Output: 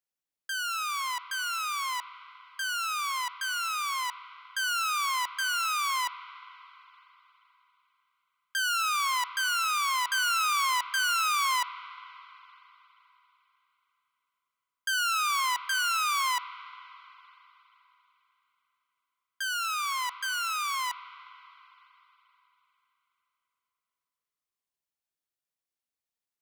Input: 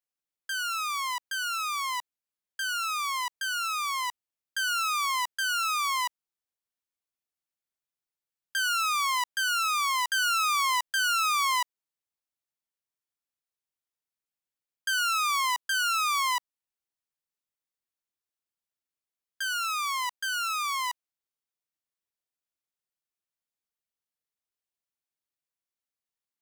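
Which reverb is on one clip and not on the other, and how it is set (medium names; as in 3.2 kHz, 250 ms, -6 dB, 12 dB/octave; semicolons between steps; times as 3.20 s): spring tank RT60 3.7 s, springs 39/44/53 ms, chirp 45 ms, DRR 13.5 dB; trim -1 dB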